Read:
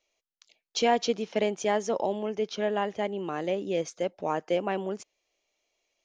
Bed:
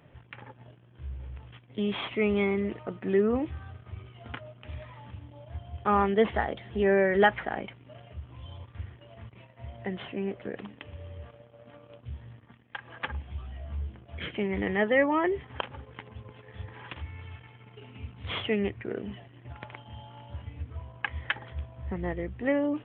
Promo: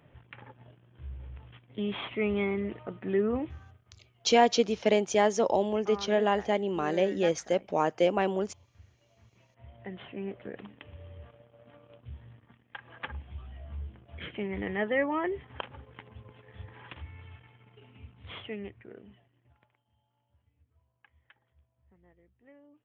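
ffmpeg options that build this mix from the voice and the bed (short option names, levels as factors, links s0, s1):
-filter_complex "[0:a]adelay=3500,volume=1.33[s0];[1:a]volume=2.99,afade=t=out:st=3.41:d=0.4:silence=0.199526,afade=t=in:st=9.16:d=1.12:silence=0.237137,afade=t=out:st=16.99:d=2.77:silence=0.0501187[s1];[s0][s1]amix=inputs=2:normalize=0"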